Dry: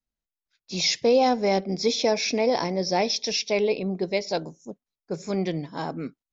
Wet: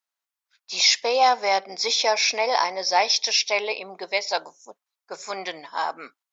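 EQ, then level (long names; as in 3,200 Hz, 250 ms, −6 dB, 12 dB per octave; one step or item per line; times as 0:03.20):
high-pass with resonance 980 Hz, resonance Q 1.6
+5.5 dB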